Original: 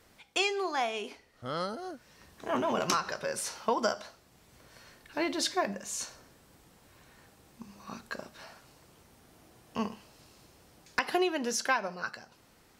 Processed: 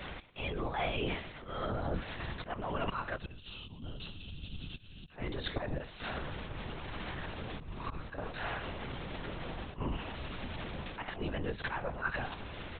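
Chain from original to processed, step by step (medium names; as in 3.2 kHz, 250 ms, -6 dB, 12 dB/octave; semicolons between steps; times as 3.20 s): octave divider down 2 oct, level +2 dB; crackle 130 per s -41 dBFS; slow attack 390 ms; reverse; compression 8:1, threshold -49 dBFS, peak gain reduction 22 dB; reverse; time-frequency box 3.16–5.11 s, 260–2500 Hz -21 dB; on a send: feedback delay 113 ms, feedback 36%, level -20 dB; on the sum: LPC vocoder at 8 kHz whisper; trim +16.5 dB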